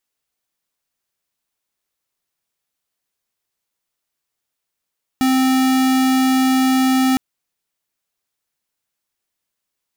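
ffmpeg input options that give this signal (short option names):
-f lavfi -i "aevalsrc='0.178*(2*lt(mod(261*t,1),0.5)-1)':d=1.96:s=44100"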